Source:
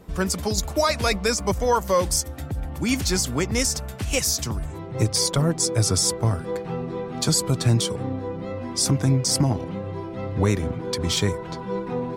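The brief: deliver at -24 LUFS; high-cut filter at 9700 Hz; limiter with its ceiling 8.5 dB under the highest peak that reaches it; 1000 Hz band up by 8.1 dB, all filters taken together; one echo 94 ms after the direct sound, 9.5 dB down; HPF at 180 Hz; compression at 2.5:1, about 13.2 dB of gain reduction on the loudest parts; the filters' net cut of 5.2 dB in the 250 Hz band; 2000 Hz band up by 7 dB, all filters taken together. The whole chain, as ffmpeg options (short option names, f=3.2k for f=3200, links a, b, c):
-af "highpass=180,lowpass=9.7k,equalizer=f=250:t=o:g=-5.5,equalizer=f=1k:t=o:g=8,equalizer=f=2k:t=o:g=6.5,acompressor=threshold=-30dB:ratio=2.5,alimiter=limit=-22dB:level=0:latency=1,aecho=1:1:94:0.335,volume=8dB"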